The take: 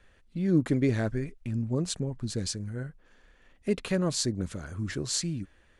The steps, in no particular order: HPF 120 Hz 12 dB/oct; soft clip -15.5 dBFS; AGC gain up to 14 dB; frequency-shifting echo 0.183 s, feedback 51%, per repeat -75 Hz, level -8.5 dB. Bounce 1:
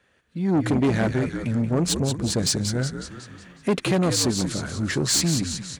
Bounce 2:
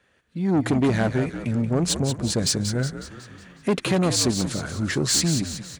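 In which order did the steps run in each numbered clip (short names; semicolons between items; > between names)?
frequency-shifting echo > AGC > soft clip > HPF; AGC > soft clip > frequency-shifting echo > HPF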